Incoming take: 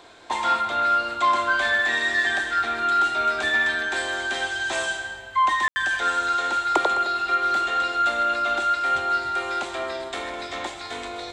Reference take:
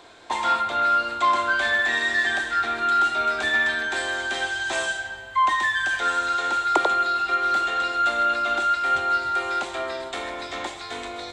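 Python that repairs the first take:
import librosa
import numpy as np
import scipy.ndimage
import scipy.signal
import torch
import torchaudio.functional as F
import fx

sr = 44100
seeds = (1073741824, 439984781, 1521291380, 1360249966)

y = fx.fix_declip(x, sr, threshold_db=-9.0)
y = fx.fix_ambience(y, sr, seeds[0], print_start_s=0.0, print_end_s=0.5, start_s=5.68, end_s=5.76)
y = fx.fix_echo_inverse(y, sr, delay_ms=209, level_db=-15.5)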